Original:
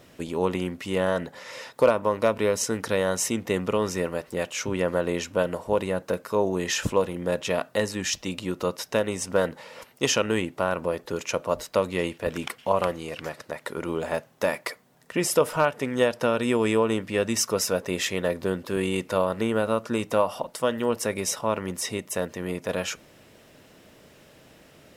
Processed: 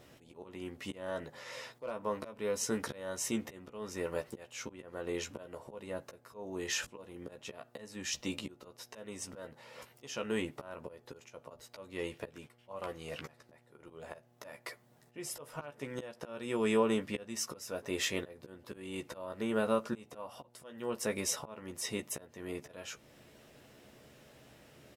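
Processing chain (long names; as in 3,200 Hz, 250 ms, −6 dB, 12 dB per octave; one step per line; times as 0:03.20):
volume swells 506 ms
double-tracking delay 14 ms −5.5 dB
hum with harmonics 120 Hz, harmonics 7, −62 dBFS
level −7 dB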